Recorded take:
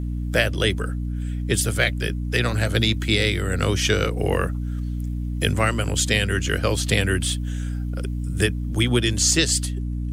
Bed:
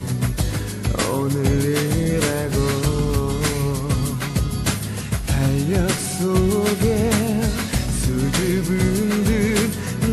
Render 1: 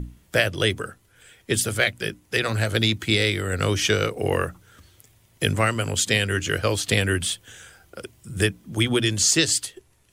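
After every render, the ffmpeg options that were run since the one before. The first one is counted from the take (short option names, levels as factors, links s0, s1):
-af "bandreject=f=60:t=h:w=6,bandreject=f=120:t=h:w=6,bandreject=f=180:t=h:w=6,bandreject=f=240:t=h:w=6,bandreject=f=300:t=h:w=6"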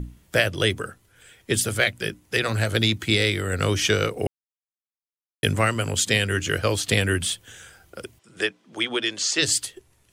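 -filter_complex "[0:a]asplit=3[s0][s1][s2];[s0]afade=t=out:st=8.18:d=0.02[s3];[s1]highpass=440,lowpass=5000,afade=t=in:st=8.18:d=0.02,afade=t=out:st=9.41:d=0.02[s4];[s2]afade=t=in:st=9.41:d=0.02[s5];[s3][s4][s5]amix=inputs=3:normalize=0,asplit=3[s6][s7][s8];[s6]atrim=end=4.27,asetpts=PTS-STARTPTS,afade=t=out:st=4.266:d=0.004:c=hsin[s9];[s7]atrim=start=4.27:end=5.43,asetpts=PTS-STARTPTS,volume=0[s10];[s8]atrim=start=5.43,asetpts=PTS-STARTPTS,afade=t=in:d=0.004:c=hsin[s11];[s9][s10][s11]concat=n=3:v=0:a=1"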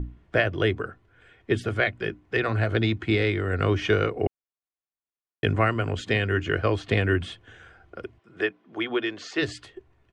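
-af "lowpass=1900,aecho=1:1:2.8:0.3"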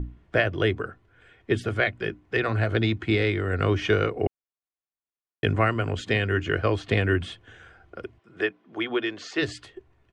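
-af anull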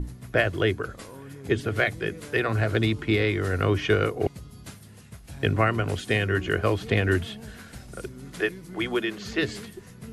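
-filter_complex "[1:a]volume=0.0841[s0];[0:a][s0]amix=inputs=2:normalize=0"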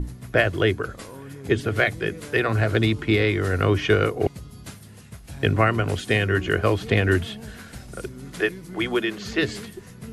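-af "volume=1.41"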